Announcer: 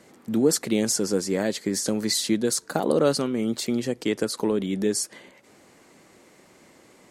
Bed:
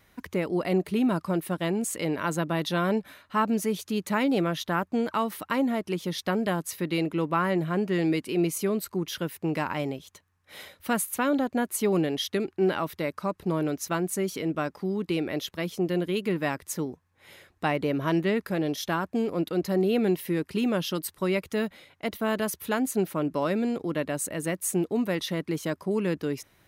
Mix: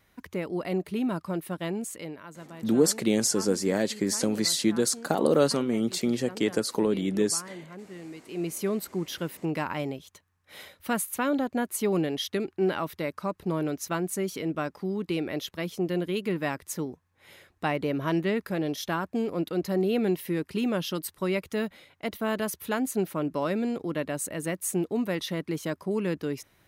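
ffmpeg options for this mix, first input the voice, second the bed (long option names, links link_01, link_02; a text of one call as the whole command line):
ffmpeg -i stem1.wav -i stem2.wav -filter_complex "[0:a]adelay=2350,volume=-1dB[link_01];[1:a]volume=11.5dB,afade=type=out:start_time=1.76:duration=0.49:silence=0.223872,afade=type=in:start_time=8.2:duration=0.46:silence=0.16788[link_02];[link_01][link_02]amix=inputs=2:normalize=0" out.wav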